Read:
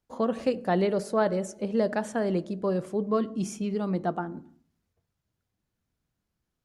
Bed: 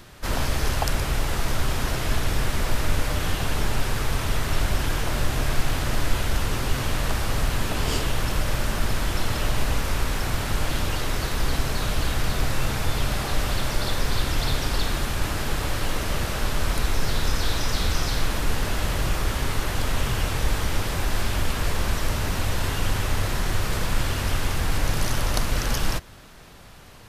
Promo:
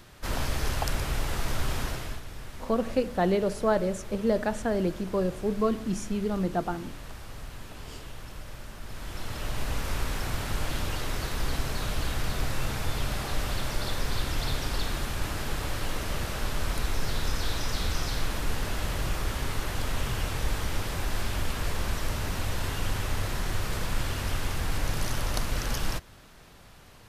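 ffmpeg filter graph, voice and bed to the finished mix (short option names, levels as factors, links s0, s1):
-filter_complex "[0:a]adelay=2500,volume=1[s0];[1:a]volume=2.24,afade=t=out:st=1.79:d=0.43:silence=0.237137,afade=t=in:st=8.83:d=1.1:silence=0.251189[s1];[s0][s1]amix=inputs=2:normalize=0"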